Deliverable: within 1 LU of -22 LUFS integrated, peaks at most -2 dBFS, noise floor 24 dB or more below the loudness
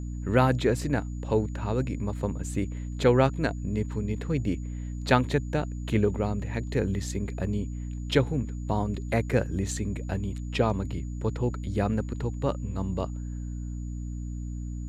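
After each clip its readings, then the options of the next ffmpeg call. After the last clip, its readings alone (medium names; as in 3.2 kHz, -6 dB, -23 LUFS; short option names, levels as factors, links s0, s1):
hum 60 Hz; highest harmonic 300 Hz; hum level -32 dBFS; steady tone 6.9 kHz; tone level -57 dBFS; loudness -29.0 LUFS; peak level -6.5 dBFS; loudness target -22.0 LUFS
-> -af "bandreject=f=60:t=h:w=6,bandreject=f=120:t=h:w=6,bandreject=f=180:t=h:w=6,bandreject=f=240:t=h:w=6,bandreject=f=300:t=h:w=6"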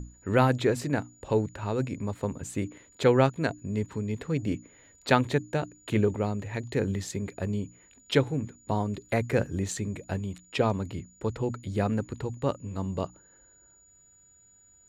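hum not found; steady tone 6.9 kHz; tone level -57 dBFS
-> -af "bandreject=f=6900:w=30"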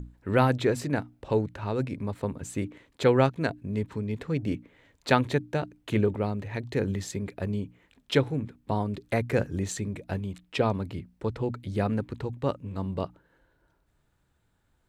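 steady tone not found; loudness -29.5 LUFS; peak level -5.5 dBFS; loudness target -22.0 LUFS
-> -af "volume=2.37,alimiter=limit=0.794:level=0:latency=1"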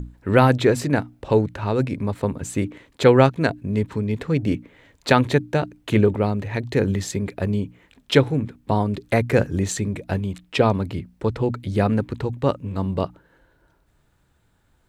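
loudness -22.0 LUFS; peak level -2.0 dBFS; noise floor -63 dBFS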